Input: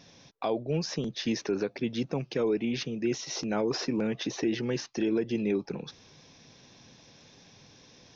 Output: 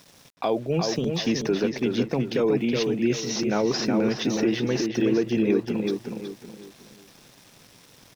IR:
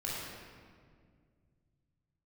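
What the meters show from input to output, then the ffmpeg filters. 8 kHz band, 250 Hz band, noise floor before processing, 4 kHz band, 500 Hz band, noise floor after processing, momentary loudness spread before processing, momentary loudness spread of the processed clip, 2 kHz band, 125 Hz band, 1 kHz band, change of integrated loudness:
no reading, +6.5 dB, -57 dBFS, +5.5 dB, +6.5 dB, -54 dBFS, 4 LU, 7 LU, +6.0 dB, +6.0 dB, +6.5 dB, +6.0 dB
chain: -filter_complex "[0:a]bandreject=f=50:t=h:w=6,bandreject=f=100:t=h:w=6,bandreject=f=150:t=h:w=6,aeval=exprs='val(0)*gte(abs(val(0)),0.00251)':c=same,asplit=2[s0][s1];[s1]adelay=370,lowpass=f=2800:p=1,volume=0.631,asplit=2[s2][s3];[s3]adelay=370,lowpass=f=2800:p=1,volume=0.35,asplit=2[s4][s5];[s5]adelay=370,lowpass=f=2800:p=1,volume=0.35,asplit=2[s6][s7];[s7]adelay=370,lowpass=f=2800:p=1,volume=0.35[s8];[s0][s2][s4][s6][s8]amix=inputs=5:normalize=0,volume=1.78"

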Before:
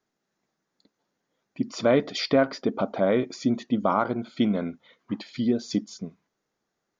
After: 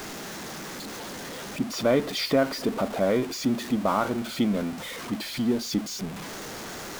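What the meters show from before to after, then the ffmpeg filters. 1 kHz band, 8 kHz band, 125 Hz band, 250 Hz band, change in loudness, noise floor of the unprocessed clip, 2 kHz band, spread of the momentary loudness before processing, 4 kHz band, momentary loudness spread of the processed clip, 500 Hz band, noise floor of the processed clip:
-0.5 dB, no reading, 0.0 dB, -0.5 dB, -2.0 dB, -81 dBFS, +2.0 dB, 13 LU, +3.5 dB, 12 LU, -1.0 dB, -38 dBFS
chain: -af "aeval=exprs='val(0)+0.5*0.0376*sgn(val(0))':c=same,volume=0.75"

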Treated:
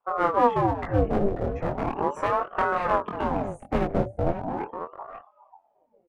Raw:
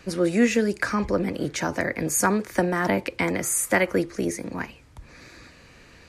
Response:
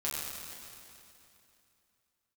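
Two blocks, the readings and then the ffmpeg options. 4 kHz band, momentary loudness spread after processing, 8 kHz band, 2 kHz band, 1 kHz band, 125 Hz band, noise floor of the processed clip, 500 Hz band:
-11.0 dB, 11 LU, under -30 dB, -8.0 dB, +5.5 dB, +1.0 dB, -67 dBFS, -0.5 dB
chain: -filter_complex "[0:a]lowpass=f=1400:p=1,afftdn=nr=29:nf=-35,tiltshelf=f=970:g=9,acrossover=split=110[s0][s1];[s1]acontrast=59[s2];[s0][s2]amix=inputs=2:normalize=0,aeval=exprs='clip(val(0),-1,0.133)':c=same,flanger=delay=19.5:depth=5:speed=2.4,asplit=2[s3][s4];[s4]adelay=542.3,volume=0.316,highshelf=f=4000:g=-12.2[s5];[s3][s5]amix=inputs=2:normalize=0,aeval=exprs='val(0)*sin(2*PI*570*n/s+570*0.65/0.38*sin(2*PI*0.38*n/s))':c=same,volume=0.596"

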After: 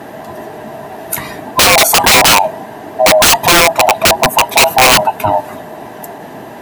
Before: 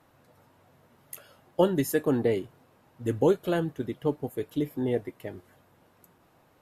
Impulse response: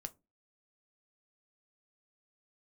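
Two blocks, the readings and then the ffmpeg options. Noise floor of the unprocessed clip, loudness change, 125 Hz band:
-63 dBFS, +20.0 dB, +9.5 dB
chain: -af "afftfilt=real='real(if(lt(b,1008),b+24*(1-2*mod(floor(b/24),2)),b),0)':imag='imag(if(lt(b,1008),b+24*(1-2*mod(floor(b/24),2)),b),0)':win_size=2048:overlap=0.75,highpass=190,tiltshelf=f=770:g=5.5,aeval=exprs='(mod(16.8*val(0)+1,2)-1)/16.8':c=same,alimiter=level_in=50.1:limit=0.891:release=50:level=0:latency=1,volume=0.891"

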